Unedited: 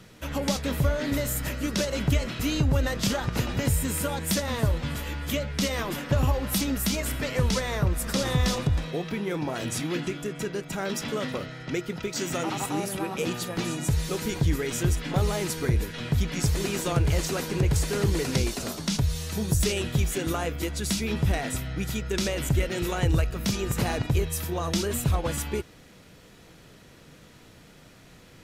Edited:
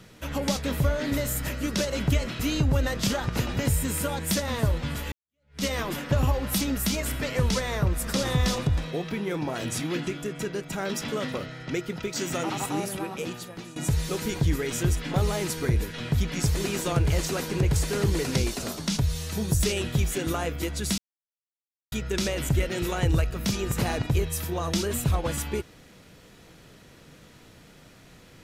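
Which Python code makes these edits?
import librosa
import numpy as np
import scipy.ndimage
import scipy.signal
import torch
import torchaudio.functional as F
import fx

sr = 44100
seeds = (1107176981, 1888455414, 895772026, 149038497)

y = fx.edit(x, sr, fx.fade_in_span(start_s=5.12, length_s=0.52, curve='exp'),
    fx.fade_out_to(start_s=12.8, length_s=0.96, floor_db=-16.0),
    fx.silence(start_s=20.98, length_s=0.94), tone=tone)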